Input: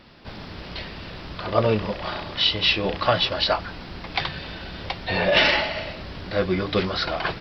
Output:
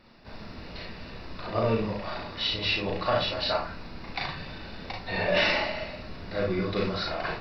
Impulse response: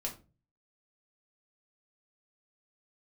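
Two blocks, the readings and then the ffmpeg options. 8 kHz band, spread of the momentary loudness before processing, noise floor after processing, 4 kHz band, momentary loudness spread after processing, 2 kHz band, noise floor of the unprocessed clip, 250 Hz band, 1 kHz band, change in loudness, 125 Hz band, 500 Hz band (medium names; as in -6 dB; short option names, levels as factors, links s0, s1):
no reading, 17 LU, -43 dBFS, -7.5 dB, 17 LU, -6.0 dB, -39 dBFS, -4.0 dB, -5.5 dB, -6.0 dB, -4.5 dB, -4.5 dB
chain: -filter_complex "[0:a]bandreject=f=3200:w=6.2,asplit=2[s0][s1];[1:a]atrim=start_sample=2205,adelay=36[s2];[s1][s2]afir=irnorm=-1:irlink=0,volume=0.944[s3];[s0][s3]amix=inputs=2:normalize=0,volume=0.376"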